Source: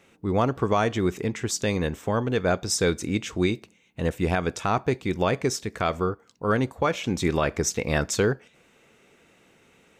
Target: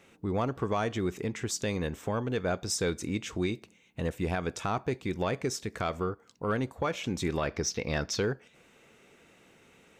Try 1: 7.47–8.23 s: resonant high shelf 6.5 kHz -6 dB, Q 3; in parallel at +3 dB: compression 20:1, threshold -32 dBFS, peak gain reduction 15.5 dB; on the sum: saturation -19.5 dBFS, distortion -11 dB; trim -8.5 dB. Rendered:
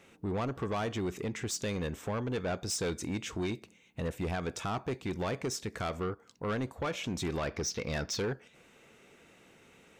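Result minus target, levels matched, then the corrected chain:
saturation: distortion +15 dB
7.47–8.23 s: resonant high shelf 6.5 kHz -6 dB, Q 3; in parallel at +3 dB: compression 20:1, threshold -32 dBFS, peak gain reduction 15.5 dB; on the sum: saturation -8.5 dBFS, distortion -25 dB; trim -8.5 dB

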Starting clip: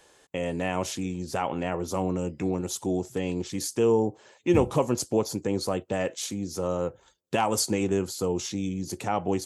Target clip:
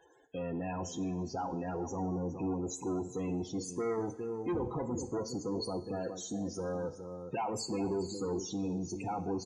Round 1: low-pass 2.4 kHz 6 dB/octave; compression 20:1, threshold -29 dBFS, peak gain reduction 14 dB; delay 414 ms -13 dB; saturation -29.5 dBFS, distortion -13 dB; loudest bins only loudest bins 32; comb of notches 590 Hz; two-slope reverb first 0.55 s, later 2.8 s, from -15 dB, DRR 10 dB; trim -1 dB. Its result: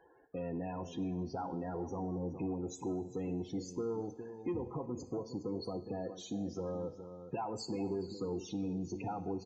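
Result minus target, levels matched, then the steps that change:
compression: peak gain reduction +14 dB; 2 kHz band -3.5 dB
remove: low-pass 2.4 kHz 6 dB/octave; remove: compression 20:1, threshold -29 dBFS, peak gain reduction 14 dB

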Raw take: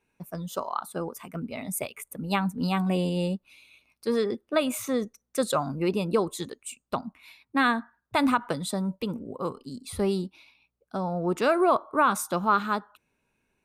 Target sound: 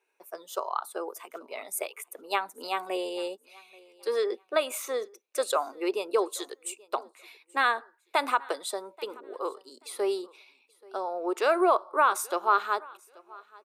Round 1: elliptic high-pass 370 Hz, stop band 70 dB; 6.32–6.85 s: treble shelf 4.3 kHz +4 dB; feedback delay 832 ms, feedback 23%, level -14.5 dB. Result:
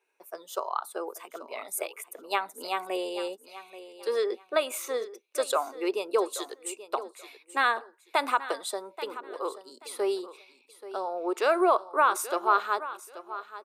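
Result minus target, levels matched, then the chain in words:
echo-to-direct +9.5 dB
elliptic high-pass 370 Hz, stop band 70 dB; 6.32–6.85 s: treble shelf 4.3 kHz +4 dB; feedback delay 832 ms, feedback 23%, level -24 dB

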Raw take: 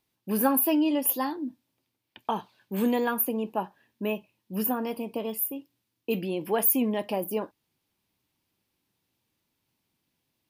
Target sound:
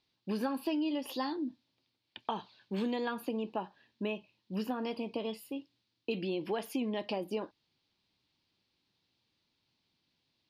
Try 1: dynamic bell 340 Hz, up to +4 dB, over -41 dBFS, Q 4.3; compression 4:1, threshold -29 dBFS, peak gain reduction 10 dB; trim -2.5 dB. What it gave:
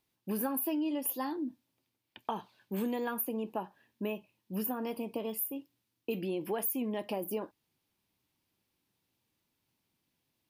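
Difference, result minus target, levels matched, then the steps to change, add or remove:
4 kHz band -7.0 dB
add after dynamic bell: resonant low-pass 4.3 kHz, resonance Q 2.9

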